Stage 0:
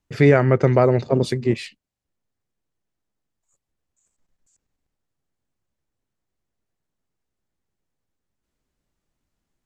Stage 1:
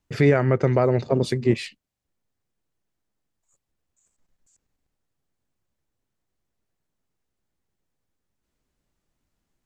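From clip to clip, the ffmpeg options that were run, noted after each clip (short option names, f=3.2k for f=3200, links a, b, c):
-af "alimiter=limit=-8.5dB:level=0:latency=1:release=436,volume=1dB"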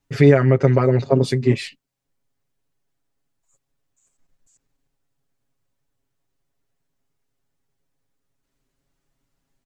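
-af "aecho=1:1:7.3:0.98"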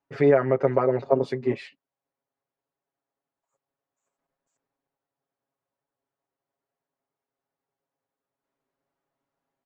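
-af "bandpass=f=760:t=q:w=1:csg=0"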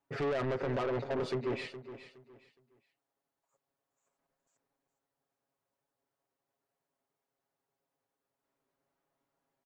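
-af "alimiter=limit=-16dB:level=0:latency=1:release=40,asoftclip=type=tanh:threshold=-29.5dB,aecho=1:1:416|832|1248:0.224|0.0604|0.0163"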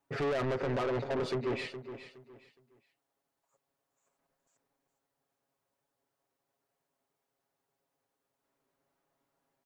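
-af "asoftclip=type=tanh:threshold=-29.5dB,volume=3dB"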